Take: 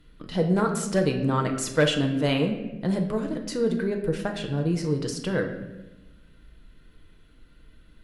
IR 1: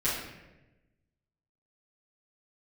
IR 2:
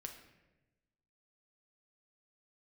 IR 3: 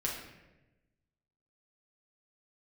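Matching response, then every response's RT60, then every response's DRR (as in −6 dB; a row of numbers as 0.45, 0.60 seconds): 2; 1.0, 1.1, 1.0 seconds; −12.5, 3.0, −4.0 decibels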